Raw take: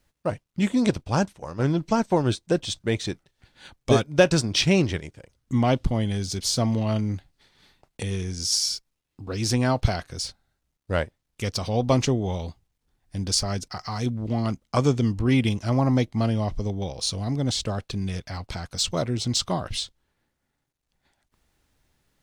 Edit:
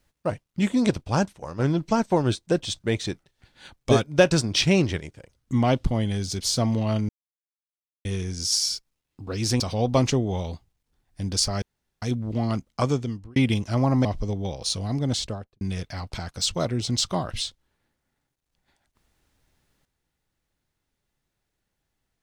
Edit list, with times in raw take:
7.09–8.05 s: mute
9.60–11.55 s: delete
13.57–13.97 s: room tone
14.68–15.31 s: fade out
16.00–16.42 s: delete
17.51–17.98 s: studio fade out

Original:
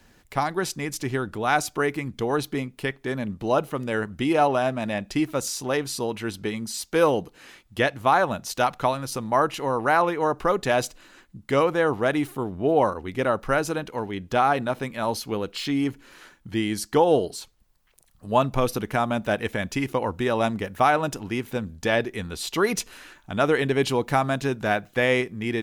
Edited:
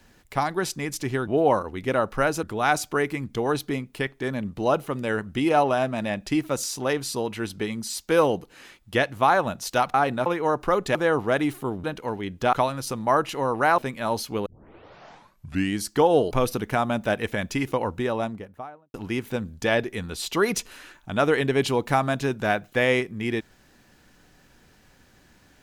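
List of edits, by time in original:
8.78–10.03 s: swap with 14.43–14.75 s
10.72–11.69 s: delete
12.58–13.74 s: move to 1.27 s
15.43 s: tape start 1.33 s
17.28–18.52 s: delete
19.93–21.15 s: studio fade out

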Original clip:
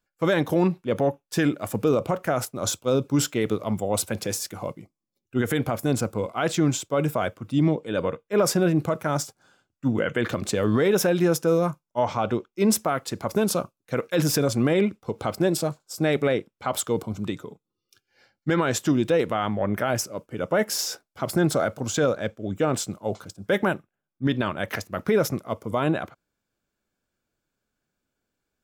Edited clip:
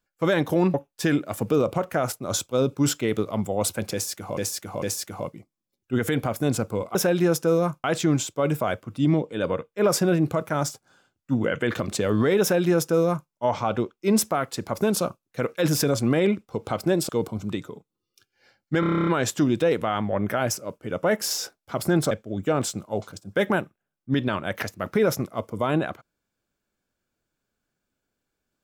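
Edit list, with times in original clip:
0.74–1.07 s: delete
4.25–4.70 s: loop, 3 plays
10.95–11.84 s: copy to 6.38 s
15.63–16.84 s: delete
18.55 s: stutter 0.03 s, 10 plays
21.59–22.24 s: delete

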